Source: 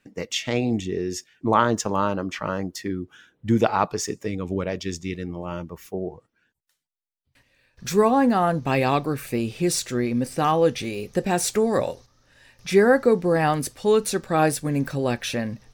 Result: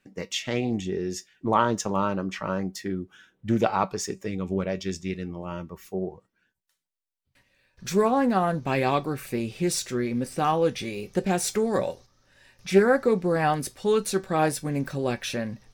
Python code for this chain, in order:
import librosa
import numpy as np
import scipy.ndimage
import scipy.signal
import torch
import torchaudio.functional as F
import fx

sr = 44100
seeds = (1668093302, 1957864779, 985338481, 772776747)

y = fx.comb_fb(x, sr, f0_hz=190.0, decay_s=0.16, harmonics='all', damping=0.0, mix_pct=60)
y = fx.doppler_dist(y, sr, depth_ms=0.19)
y = y * 10.0 ** (2.5 / 20.0)